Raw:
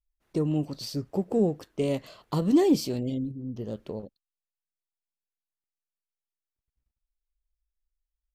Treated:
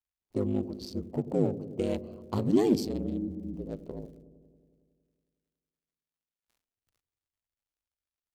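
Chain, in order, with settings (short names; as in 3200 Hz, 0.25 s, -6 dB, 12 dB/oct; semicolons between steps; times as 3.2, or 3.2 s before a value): Wiener smoothing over 25 samples; crackle 210/s -55 dBFS; gate with hold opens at -49 dBFS; ring modulator 51 Hz; on a send: dark delay 92 ms, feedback 74%, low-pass 450 Hz, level -12 dB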